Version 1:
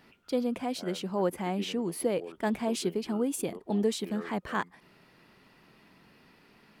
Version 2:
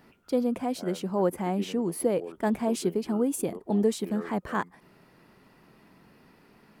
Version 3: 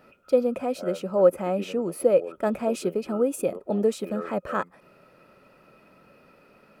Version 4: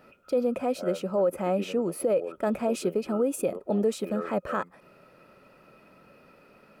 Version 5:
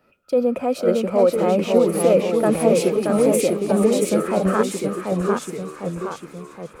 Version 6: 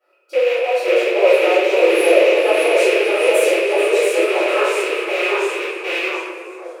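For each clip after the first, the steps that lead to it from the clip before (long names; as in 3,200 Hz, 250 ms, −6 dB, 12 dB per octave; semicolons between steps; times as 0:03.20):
parametric band 3,300 Hz −7.5 dB 1.9 octaves; level +3.5 dB
hollow resonant body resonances 560/1,300/2,500 Hz, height 15 dB, ringing for 30 ms; level −2.5 dB
brickwall limiter −17 dBFS, peak gain reduction 9.5 dB
delay with a high-pass on its return 432 ms, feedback 69%, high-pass 2,100 Hz, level −10 dB; delay with pitch and tempo change per echo 482 ms, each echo −1 semitone, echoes 3; multiband upward and downward expander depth 40%; level +7 dB
loose part that buzzes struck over −30 dBFS, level −10 dBFS; linear-phase brick-wall high-pass 320 Hz; convolution reverb RT60 1.5 s, pre-delay 3 ms, DRR −17 dB; level −17 dB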